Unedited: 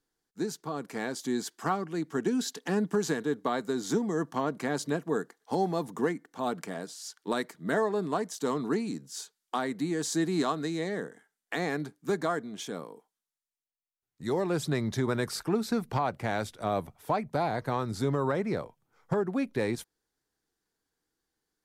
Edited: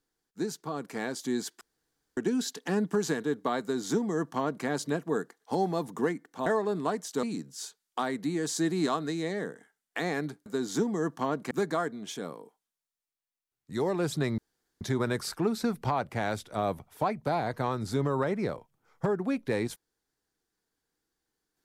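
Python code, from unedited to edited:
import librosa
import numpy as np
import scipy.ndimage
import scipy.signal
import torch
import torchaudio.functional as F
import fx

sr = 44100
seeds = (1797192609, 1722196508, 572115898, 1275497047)

y = fx.edit(x, sr, fx.room_tone_fill(start_s=1.61, length_s=0.56),
    fx.duplicate(start_s=3.61, length_s=1.05, to_s=12.02),
    fx.cut(start_s=6.46, length_s=1.27),
    fx.cut(start_s=8.5, length_s=0.29),
    fx.insert_room_tone(at_s=14.89, length_s=0.43), tone=tone)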